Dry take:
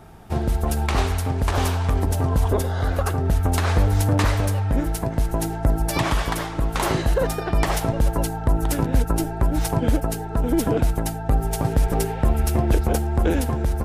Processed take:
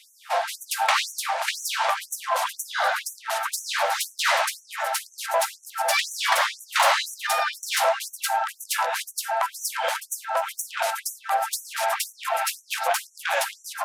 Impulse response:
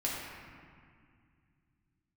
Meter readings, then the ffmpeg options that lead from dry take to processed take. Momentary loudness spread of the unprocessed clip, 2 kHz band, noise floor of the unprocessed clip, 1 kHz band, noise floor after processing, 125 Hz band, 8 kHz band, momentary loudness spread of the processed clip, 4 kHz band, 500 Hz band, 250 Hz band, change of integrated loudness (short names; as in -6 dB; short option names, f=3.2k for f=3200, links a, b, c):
4 LU, +6.5 dB, -30 dBFS, +4.0 dB, -55 dBFS, under -40 dB, +4.0 dB, 7 LU, +7.0 dB, -3.5 dB, under -40 dB, -2.5 dB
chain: -filter_complex "[0:a]asplit=2[a][b];[b]highpass=f=720:p=1,volume=20dB,asoftclip=type=tanh:threshold=-9dB[c];[a][c]amix=inputs=2:normalize=0,lowpass=f=4k:p=1,volume=-6dB,afftfilt=real='re*gte(b*sr/1024,480*pow(5800/480,0.5+0.5*sin(2*PI*2*pts/sr)))':imag='im*gte(b*sr/1024,480*pow(5800/480,0.5+0.5*sin(2*PI*2*pts/sr)))':win_size=1024:overlap=0.75"